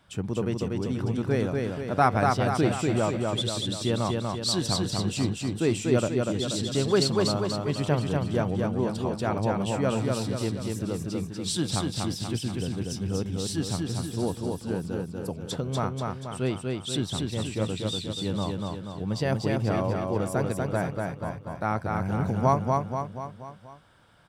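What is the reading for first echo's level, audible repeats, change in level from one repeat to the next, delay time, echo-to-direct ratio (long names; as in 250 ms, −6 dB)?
−3.0 dB, 5, −5.5 dB, 241 ms, −1.5 dB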